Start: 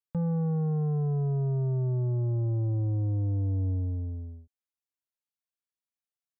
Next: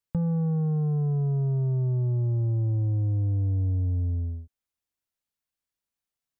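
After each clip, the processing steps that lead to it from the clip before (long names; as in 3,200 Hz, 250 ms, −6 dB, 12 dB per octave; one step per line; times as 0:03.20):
low-shelf EQ 150 Hz +8 dB
downward compressor 5 to 1, threshold −28 dBFS, peak gain reduction 6.5 dB
level +4 dB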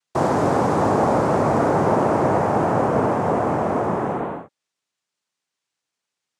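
hard clipping −25 dBFS, distortion −17 dB
cochlear-implant simulation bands 2
level +8.5 dB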